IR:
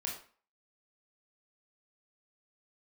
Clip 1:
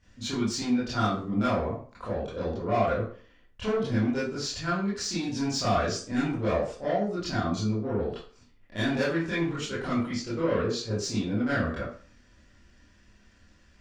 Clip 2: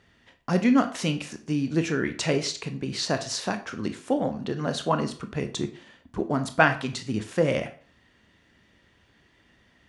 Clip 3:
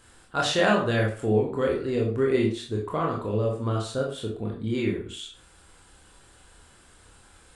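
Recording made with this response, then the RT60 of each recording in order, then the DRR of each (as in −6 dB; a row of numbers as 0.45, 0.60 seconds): 3; 0.45, 0.40, 0.45 seconds; −12.0, 7.5, −2.0 decibels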